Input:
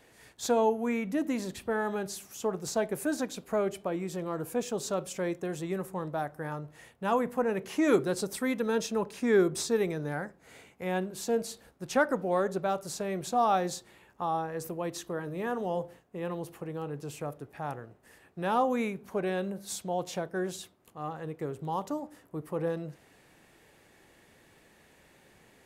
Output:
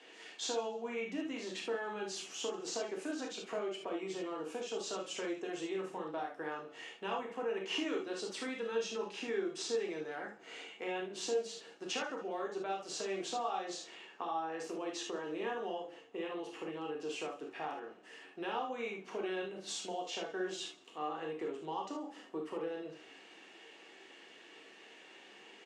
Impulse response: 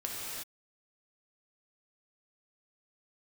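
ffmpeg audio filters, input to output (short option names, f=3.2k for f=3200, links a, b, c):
-filter_complex "[0:a]acompressor=threshold=-38dB:ratio=6,highpass=f=280:w=0.5412,highpass=f=280:w=1.3066,equalizer=f=410:t=q:w=4:g=3,equalizer=f=590:t=q:w=4:g=-5,equalizer=f=2.9k:t=q:w=4:g=10,lowpass=f=6.9k:w=0.5412,lowpass=f=6.9k:w=1.3066,asplit=4[a][b][c][d];[b]adelay=137,afreqshift=-31,volume=-21dB[e];[c]adelay=274,afreqshift=-62,volume=-30.4dB[f];[d]adelay=411,afreqshift=-93,volume=-39.7dB[g];[a][e][f][g]amix=inputs=4:normalize=0[h];[1:a]atrim=start_sample=2205,atrim=end_sample=6615,asetrate=79380,aresample=44100[i];[h][i]afir=irnorm=-1:irlink=0,volume=7.5dB"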